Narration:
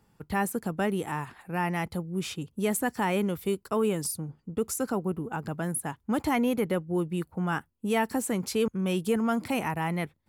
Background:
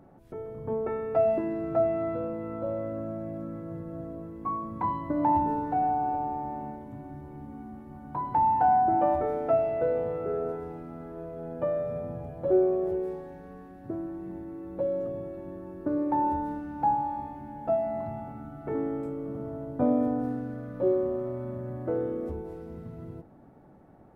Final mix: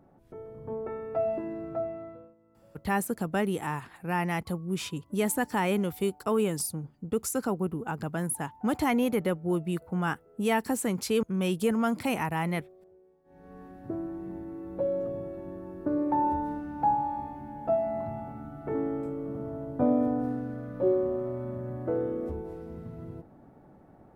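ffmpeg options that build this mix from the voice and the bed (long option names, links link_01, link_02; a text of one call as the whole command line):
ffmpeg -i stem1.wav -i stem2.wav -filter_complex "[0:a]adelay=2550,volume=0dB[link_01];[1:a]volume=23.5dB,afade=type=out:start_time=1.59:duration=0.76:silence=0.0668344,afade=type=in:start_time=13.24:duration=0.41:silence=0.0375837[link_02];[link_01][link_02]amix=inputs=2:normalize=0" out.wav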